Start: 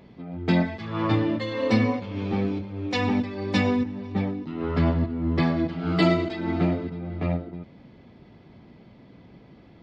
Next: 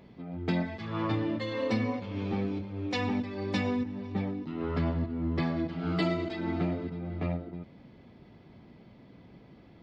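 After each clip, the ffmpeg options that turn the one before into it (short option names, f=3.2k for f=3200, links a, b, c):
-af "acompressor=threshold=-25dB:ratio=2,volume=-3.5dB"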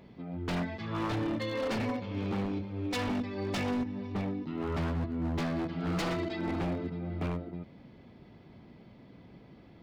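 -af "aeval=exprs='0.0473*(abs(mod(val(0)/0.0473+3,4)-2)-1)':c=same"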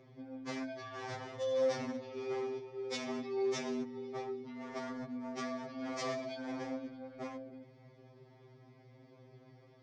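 -af "aeval=exprs='val(0)+0.00282*(sin(2*PI*60*n/s)+sin(2*PI*2*60*n/s)/2+sin(2*PI*3*60*n/s)/3+sin(2*PI*4*60*n/s)/4+sin(2*PI*5*60*n/s)/5)':c=same,highpass=190,equalizer=f=250:t=q:w=4:g=-8,equalizer=f=900:t=q:w=4:g=-4,equalizer=f=1.5k:t=q:w=4:g=-6,equalizer=f=2.8k:t=q:w=4:g=-10,equalizer=f=4k:t=q:w=4:g=-6,equalizer=f=5.7k:t=q:w=4:g=6,lowpass=f=7.1k:w=0.5412,lowpass=f=7.1k:w=1.3066,afftfilt=real='re*2.45*eq(mod(b,6),0)':imag='im*2.45*eq(mod(b,6),0)':win_size=2048:overlap=0.75,volume=1dB"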